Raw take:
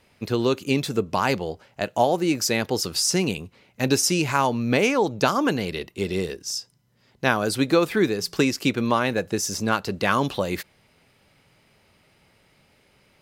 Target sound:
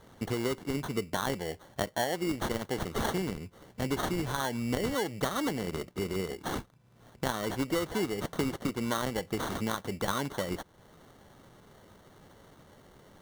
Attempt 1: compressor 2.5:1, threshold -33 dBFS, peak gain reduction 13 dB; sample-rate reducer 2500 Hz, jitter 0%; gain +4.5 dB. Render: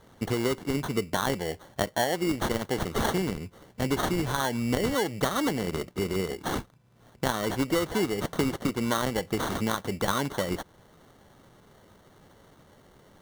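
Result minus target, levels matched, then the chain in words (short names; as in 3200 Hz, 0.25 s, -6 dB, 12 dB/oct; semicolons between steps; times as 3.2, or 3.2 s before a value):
compressor: peak gain reduction -4 dB
compressor 2.5:1, threshold -40 dBFS, peak gain reduction 17 dB; sample-rate reducer 2500 Hz, jitter 0%; gain +4.5 dB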